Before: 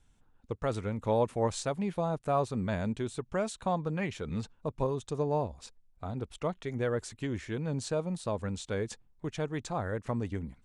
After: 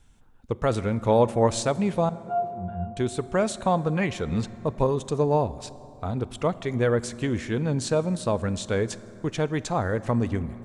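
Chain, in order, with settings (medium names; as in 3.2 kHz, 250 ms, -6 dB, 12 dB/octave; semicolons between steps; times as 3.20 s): 2.09–2.97 s: pitch-class resonator F, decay 0.25 s; on a send: reverberation RT60 3.4 s, pre-delay 4 ms, DRR 15.5 dB; on the sum: trim +8 dB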